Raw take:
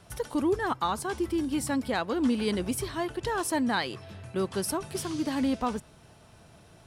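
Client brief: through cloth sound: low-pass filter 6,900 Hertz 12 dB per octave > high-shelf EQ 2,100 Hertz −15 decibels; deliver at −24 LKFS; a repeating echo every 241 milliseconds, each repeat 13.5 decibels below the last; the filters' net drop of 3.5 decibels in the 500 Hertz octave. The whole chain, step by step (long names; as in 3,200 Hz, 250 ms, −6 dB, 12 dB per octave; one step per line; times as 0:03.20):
low-pass filter 6,900 Hz 12 dB per octave
parametric band 500 Hz −4 dB
high-shelf EQ 2,100 Hz −15 dB
repeating echo 241 ms, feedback 21%, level −13.5 dB
level +8.5 dB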